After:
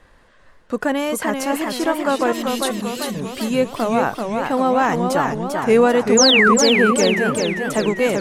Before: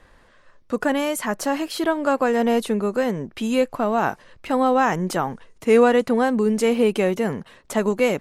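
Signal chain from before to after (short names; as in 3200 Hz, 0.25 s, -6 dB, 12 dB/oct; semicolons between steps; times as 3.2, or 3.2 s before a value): 2.32–3.15 EQ curve 150 Hz 0 dB, 870 Hz -27 dB, 3600 Hz +9 dB; 6.17–6.54 painted sound fall 980–7400 Hz -15 dBFS; warbling echo 0.392 s, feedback 57%, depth 155 cents, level -4.5 dB; gain +1 dB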